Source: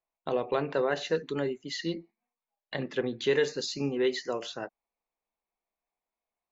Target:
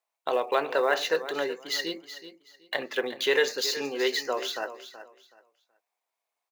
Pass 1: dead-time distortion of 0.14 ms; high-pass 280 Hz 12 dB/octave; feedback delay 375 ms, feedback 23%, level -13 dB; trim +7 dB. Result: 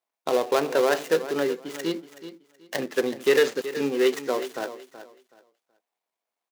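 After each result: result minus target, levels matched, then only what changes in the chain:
dead-time distortion: distortion +16 dB; 250 Hz band +5.5 dB
change: dead-time distortion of 0.028 ms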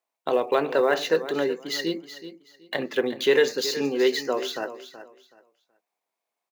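250 Hz band +5.5 dB
change: high-pass 580 Hz 12 dB/octave

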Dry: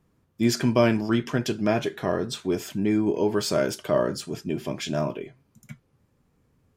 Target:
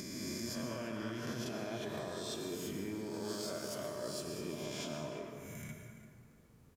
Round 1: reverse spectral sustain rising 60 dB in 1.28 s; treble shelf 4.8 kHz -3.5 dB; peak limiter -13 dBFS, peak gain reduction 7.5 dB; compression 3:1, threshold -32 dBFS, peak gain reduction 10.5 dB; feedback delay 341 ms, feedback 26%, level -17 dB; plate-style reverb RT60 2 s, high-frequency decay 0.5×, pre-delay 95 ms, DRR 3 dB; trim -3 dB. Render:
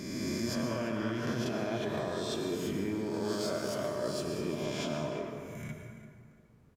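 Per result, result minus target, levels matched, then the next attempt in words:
compression: peak gain reduction -7 dB; 8 kHz band -5.5 dB
reverse spectral sustain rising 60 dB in 1.28 s; treble shelf 4.8 kHz -3.5 dB; peak limiter -13 dBFS, peak gain reduction 7.5 dB; compression 3:1, threshold -42.5 dBFS, peak gain reduction 17.5 dB; feedback delay 341 ms, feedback 26%, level -17 dB; plate-style reverb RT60 2 s, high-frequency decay 0.5×, pre-delay 95 ms, DRR 3 dB; trim -3 dB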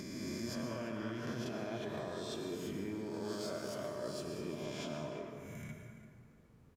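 8 kHz band -5.5 dB
reverse spectral sustain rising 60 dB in 1.28 s; treble shelf 4.8 kHz +6.5 dB; peak limiter -13 dBFS, peak gain reduction 8.5 dB; compression 3:1, threshold -42.5 dBFS, peak gain reduction 17.5 dB; feedback delay 341 ms, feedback 26%, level -17 dB; plate-style reverb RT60 2 s, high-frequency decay 0.5×, pre-delay 95 ms, DRR 3 dB; trim -3 dB

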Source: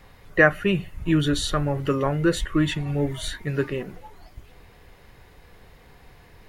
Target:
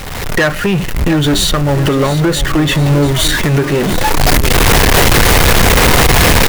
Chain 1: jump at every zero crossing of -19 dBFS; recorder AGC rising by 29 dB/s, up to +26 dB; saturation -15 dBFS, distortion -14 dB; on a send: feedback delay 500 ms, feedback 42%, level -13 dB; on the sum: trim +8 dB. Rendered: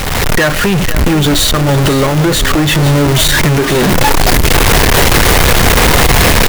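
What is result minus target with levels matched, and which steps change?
echo 192 ms early; jump at every zero crossing: distortion +8 dB
change: jump at every zero crossing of -29 dBFS; change: feedback delay 692 ms, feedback 42%, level -13 dB

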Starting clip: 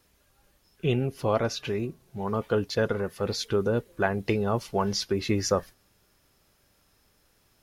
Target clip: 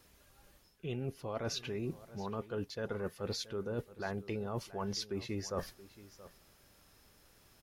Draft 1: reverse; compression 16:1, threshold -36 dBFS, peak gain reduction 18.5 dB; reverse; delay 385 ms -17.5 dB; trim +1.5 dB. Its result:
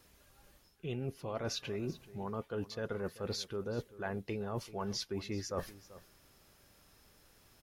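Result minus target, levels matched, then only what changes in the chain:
echo 291 ms early
change: delay 676 ms -17.5 dB

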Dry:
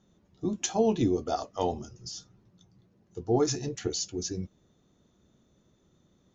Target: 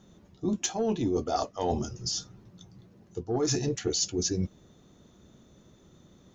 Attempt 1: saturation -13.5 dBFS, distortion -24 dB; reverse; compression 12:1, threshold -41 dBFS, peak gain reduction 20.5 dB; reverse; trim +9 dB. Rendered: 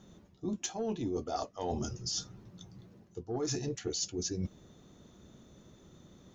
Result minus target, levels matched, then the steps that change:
compression: peak gain reduction +7 dB
change: compression 12:1, threshold -33.5 dBFS, peak gain reduction 13.5 dB

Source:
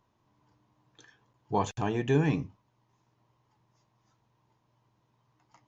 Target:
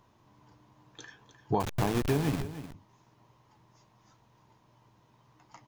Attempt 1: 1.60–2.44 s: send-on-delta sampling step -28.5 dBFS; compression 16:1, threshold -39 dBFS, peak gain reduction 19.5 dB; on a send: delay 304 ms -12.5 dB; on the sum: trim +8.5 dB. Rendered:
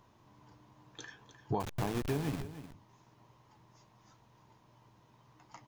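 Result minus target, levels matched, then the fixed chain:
compression: peak gain reduction +6 dB
1.60–2.44 s: send-on-delta sampling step -28.5 dBFS; compression 16:1, threshold -32.5 dBFS, peak gain reduction 13.5 dB; on a send: delay 304 ms -12.5 dB; on the sum: trim +8.5 dB

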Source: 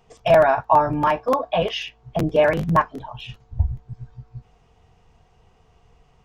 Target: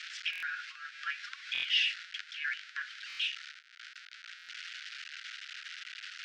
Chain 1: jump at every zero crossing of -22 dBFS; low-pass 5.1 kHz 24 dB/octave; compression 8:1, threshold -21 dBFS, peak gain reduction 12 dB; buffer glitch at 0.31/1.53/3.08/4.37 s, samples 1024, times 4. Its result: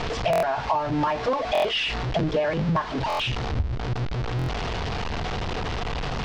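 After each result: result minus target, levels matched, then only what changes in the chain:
1 kHz band +14.5 dB; jump at every zero crossing: distortion +7 dB
add after compression: steep high-pass 1.4 kHz 96 dB/octave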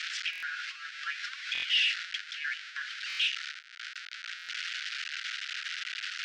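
jump at every zero crossing: distortion +7 dB
change: jump at every zero crossing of -30 dBFS

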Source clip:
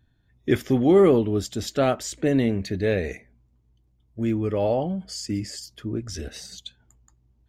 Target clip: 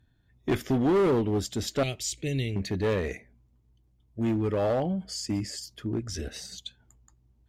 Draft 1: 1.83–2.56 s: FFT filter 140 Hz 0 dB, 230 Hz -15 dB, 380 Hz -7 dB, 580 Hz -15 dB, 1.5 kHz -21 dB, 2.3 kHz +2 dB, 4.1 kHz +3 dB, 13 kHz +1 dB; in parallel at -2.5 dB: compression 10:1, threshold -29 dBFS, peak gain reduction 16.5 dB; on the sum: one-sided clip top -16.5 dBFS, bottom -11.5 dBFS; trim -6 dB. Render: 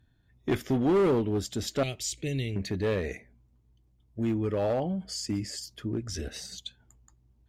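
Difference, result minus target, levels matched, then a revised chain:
compression: peak gain reduction +8.5 dB
1.83–2.56 s: FFT filter 140 Hz 0 dB, 230 Hz -15 dB, 380 Hz -7 dB, 580 Hz -15 dB, 1.5 kHz -21 dB, 2.3 kHz +2 dB, 4.1 kHz +3 dB, 13 kHz +1 dB; in parallel at -2.5 dB: compression 10:1, threshold -19.5 dBFS, peak gain reduction 8 dB; on the sum: one-sided clip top -16.5 dBFS, bottom -11.5 dBFS; trim -6 dB

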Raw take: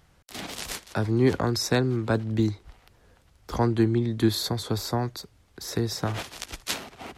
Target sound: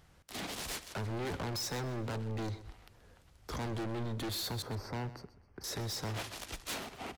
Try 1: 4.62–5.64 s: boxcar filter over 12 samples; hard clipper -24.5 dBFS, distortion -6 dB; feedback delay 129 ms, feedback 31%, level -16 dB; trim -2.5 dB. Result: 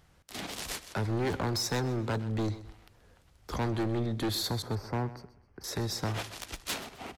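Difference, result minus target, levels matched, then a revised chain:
hard clipper: distortion -4 dB
4.62–5.64 s: boxcar filter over 12 samples; hard clipper -33 dBFS, distortion -2 dB; feedback delay 129 ms, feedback 31%, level -16 dB; trim -2.5 dB

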